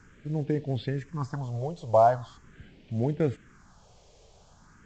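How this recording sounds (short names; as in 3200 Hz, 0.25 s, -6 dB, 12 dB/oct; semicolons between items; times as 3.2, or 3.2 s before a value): a quantiser's noise floor 10-bit, dither triangular; phasing stages 4, 0.42 Hz, lowest notch 250–1300 Hz; µ-law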